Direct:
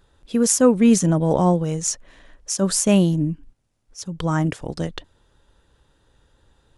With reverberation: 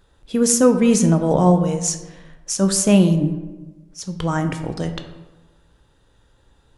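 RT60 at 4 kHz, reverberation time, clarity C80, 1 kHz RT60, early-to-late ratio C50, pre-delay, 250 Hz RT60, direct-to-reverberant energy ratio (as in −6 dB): 0.65 s, 1.2 s, 11.5 dB, 1.1 s, 9.5 dB, 9 ms, 1.3 s, 6.5 dB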